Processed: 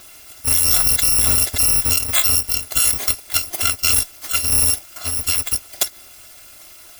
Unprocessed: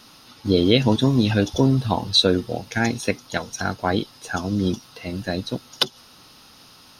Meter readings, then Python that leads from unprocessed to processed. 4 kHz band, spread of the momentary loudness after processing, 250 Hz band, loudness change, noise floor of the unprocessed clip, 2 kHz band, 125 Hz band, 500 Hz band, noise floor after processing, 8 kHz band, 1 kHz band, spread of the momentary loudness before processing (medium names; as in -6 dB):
+2.0 dB, 9 LU, -16.5 dB, +6.5 dB, -49 dBFS, +1.5 dB, -7.0 dB, -13.5 dB, -43 dBFS, +21.0 dB, -4.0 dB, 12 LU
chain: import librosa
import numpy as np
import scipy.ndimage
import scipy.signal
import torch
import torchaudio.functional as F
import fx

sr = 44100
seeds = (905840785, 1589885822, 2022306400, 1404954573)

p1 = fx.bit_reversed(x, sr, seeds[0], block=256)
p2 = fx.over_compress(p1, sr, threshold_db=-21.0, ratio=-0.5)
p3 = p1 + (p2 * librosa.db_to_amplitude(0.0))
y = p3 * librosa.db_to_amplitude(-1.0)